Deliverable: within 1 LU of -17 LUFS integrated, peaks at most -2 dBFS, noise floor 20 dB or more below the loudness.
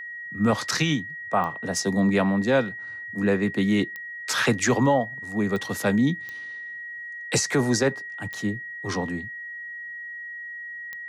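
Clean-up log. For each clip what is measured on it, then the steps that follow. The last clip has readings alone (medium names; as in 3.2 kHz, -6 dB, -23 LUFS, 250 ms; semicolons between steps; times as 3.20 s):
clicks found 6; steady tone 1.9 kHz; tone level -34 dBFS; loudness -25.5 LUFS; peak level -11.0 dBFS; loudness target -17.0 LUFS
-> de-click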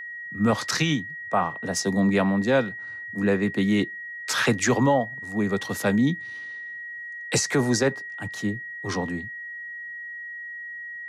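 clicks found 0; steady tone 1.9 kHz; tone level -34 dBFS
-> band-stop 1.9 kHz, Q 30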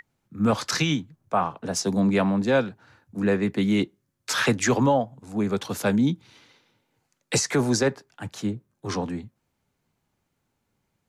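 steady tone not found; loudness -24.5 LUFS; peak level -11.0 dBFS; loudness target -17.0 LUFS
-> trim +7.5 dB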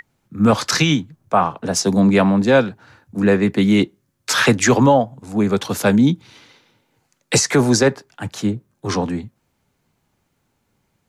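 loudness -17.5 LUFS; peak level -3.5 dBFS; noise floor -69 dBFS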